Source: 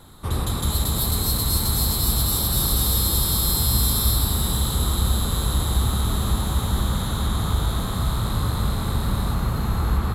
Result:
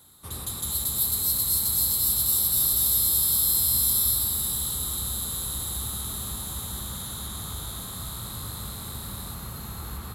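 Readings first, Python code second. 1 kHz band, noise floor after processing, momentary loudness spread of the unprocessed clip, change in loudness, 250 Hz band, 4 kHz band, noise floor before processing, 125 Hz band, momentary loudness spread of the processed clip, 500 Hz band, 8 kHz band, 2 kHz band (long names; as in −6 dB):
−12.5 dB, −38 dBFS, 5 LU, −1.0 dB, −14.0 dB, −5.5 dB, −26 dBFS, −15.0 dB, 16 LU, −13.5 dB, +1.5 dB, −10.5 dB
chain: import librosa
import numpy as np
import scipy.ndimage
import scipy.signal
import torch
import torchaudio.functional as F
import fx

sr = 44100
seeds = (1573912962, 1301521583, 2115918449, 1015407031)

y = scipy.signal.sosfilt(scipy.signal.butter(2, 57.0, 'highpass', fs=sr, output='sos'), x)
y = scipy.signal.lfilter([1.0, -0.8], [1.0], y)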